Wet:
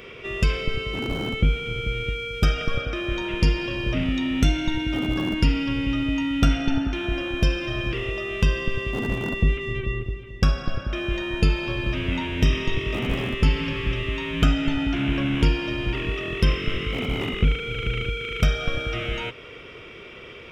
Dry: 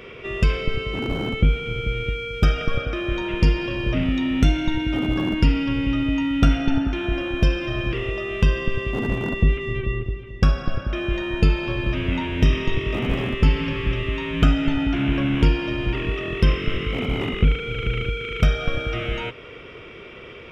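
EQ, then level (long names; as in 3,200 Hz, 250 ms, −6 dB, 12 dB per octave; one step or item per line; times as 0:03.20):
high-shelf EQ 3,800 Hz +8.5 dB
−2.5 dB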